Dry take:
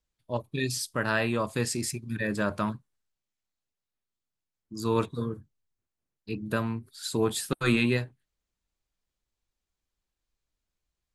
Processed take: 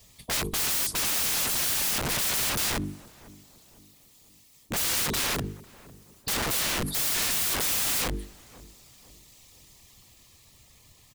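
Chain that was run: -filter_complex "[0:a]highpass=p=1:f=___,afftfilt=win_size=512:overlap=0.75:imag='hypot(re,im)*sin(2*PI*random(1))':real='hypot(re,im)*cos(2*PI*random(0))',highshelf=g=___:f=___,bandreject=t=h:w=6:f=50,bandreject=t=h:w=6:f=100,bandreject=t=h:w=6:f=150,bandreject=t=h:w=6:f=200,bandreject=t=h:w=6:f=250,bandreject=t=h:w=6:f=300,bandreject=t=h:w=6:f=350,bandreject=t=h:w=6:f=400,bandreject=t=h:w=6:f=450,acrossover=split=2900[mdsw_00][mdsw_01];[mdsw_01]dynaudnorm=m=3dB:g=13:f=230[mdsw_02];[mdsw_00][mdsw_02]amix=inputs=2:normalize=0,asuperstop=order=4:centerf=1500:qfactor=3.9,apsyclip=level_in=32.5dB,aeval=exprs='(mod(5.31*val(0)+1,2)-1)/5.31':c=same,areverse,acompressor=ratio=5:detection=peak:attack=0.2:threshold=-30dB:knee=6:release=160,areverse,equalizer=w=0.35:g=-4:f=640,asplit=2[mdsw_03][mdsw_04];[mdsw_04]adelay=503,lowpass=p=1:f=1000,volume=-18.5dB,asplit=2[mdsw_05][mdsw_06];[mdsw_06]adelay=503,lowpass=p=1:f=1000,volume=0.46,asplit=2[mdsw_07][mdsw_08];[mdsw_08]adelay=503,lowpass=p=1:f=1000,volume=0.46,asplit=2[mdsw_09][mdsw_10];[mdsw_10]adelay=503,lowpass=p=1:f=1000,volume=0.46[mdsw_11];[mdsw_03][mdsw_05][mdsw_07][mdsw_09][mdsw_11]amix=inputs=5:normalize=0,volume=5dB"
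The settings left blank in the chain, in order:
56, 3.5, 5300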